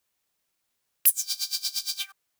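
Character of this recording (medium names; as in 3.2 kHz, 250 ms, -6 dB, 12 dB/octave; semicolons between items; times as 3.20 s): noise floor -78 dBFS; spectral tilt +5.0 dB/octave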